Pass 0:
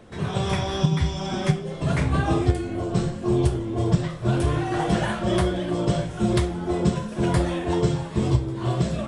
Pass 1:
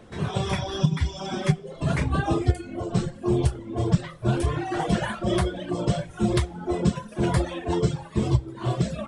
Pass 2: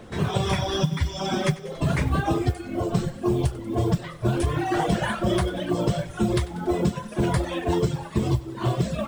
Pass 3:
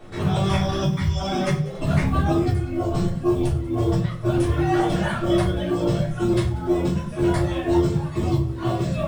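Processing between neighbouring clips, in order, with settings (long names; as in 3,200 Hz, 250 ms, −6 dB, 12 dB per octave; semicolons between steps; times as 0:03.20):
reverb reduction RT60 1.2 s
downward compressor, threshold −24 dBFS, peak gain reduction 10.5 dB; noise that follows the level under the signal 33 dB; feedback echo with a high-pass in the loop 95 ms, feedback 75%, level −18 dB; level +5 dB
convolution reverb RT60 0.35 s, pre-delay 3 ms, DRR −7 dB; level −7 dB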